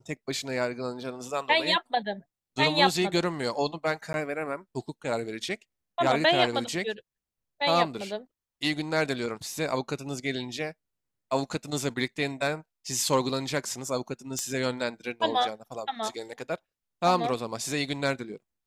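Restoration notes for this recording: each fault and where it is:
4.13–4.14 gap
14.39 pop -15 dBFS

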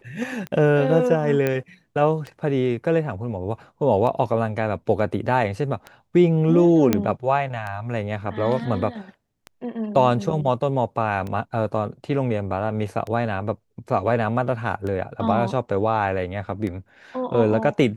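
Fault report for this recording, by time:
tick 33 1/3 rpm -19 dBFS
1.47 pop -10 dBFS
6.93 pop -5 dBFS

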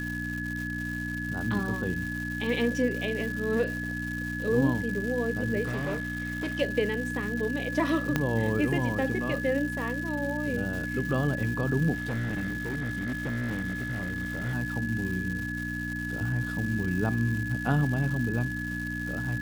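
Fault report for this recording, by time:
crackle 420/s -35 dBFS
hum 60 Hz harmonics 5 -35 dBFS
tone 1700 Hz -34 dBFS
5.65–6.61 clipped -26.5 dBFS
8.16 pop -11 dBFS
11.93–14.55 clipped -27 dBFS

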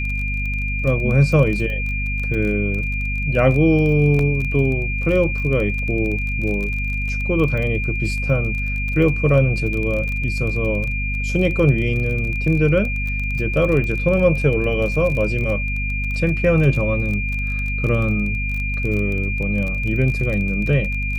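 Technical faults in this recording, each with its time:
crackle 24/s -25 dBFS
hum 50 Hz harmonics 5 -24 dBFS
tone 2400 Hz -25 dBFS
4.19 gap 2.5 ms

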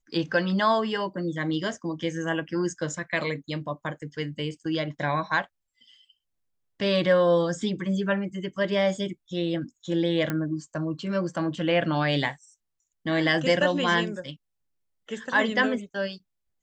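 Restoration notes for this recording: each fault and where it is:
2.48–2.49 gap 6.2 ms
10.3 pop -14 dBFS

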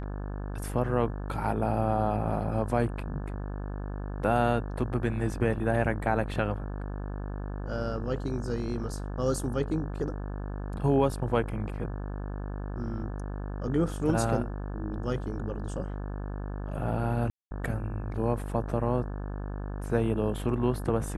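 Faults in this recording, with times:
buzz 50 Hz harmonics 35 -35 dBFS
17.3–17.51 gap 0.21 s

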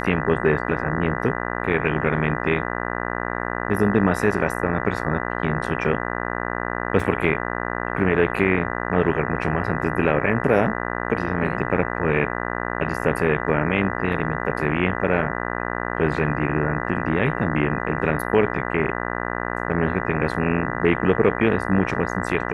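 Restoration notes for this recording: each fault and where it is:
buzz 60 Hz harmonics 33 -27 dBFS
7 gap 2.9 ms

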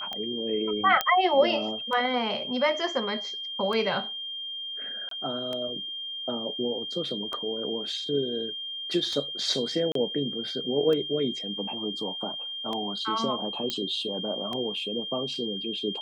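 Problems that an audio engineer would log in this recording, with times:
tick 33 1/3 rpm -20 dBFS
tone 3200 Hz -33 dBFS
1.01 pop -8 dBFS
5.09–5.11 gap 23 ms
9.92–9.95 gap 33 ms
13.7 pop -13 dBFS

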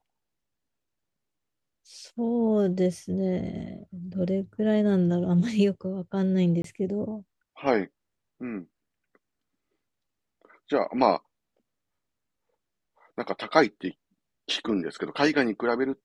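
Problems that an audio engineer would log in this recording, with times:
6.62–6.64 gap 23 ms

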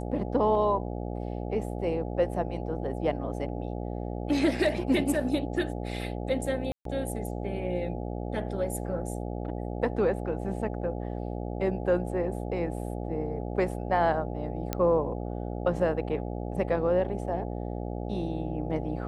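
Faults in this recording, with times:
buzz 60 Hz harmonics 14 -34 dBFS
6.72–6.85 gap 0.133 s
14.73 pop -13 dBFS

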